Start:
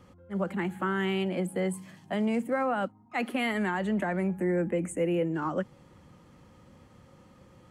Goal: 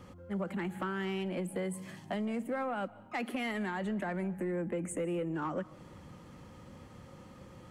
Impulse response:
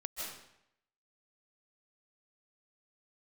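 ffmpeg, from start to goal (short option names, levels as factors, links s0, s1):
-filter_complex "[0:a]acompressor=threshold=0.0158:ratio=4,asoftclip=type=tanh:threshold=0.0335,asplit=2[s0][s1];[1:a]atrim=start_sample=2205[s2];[s1][s2]afir=irnorm=-1:irlink=0,volume=0.119[s3];[s0][s3]amix=inputs=2:normalize=0,volume=1.41"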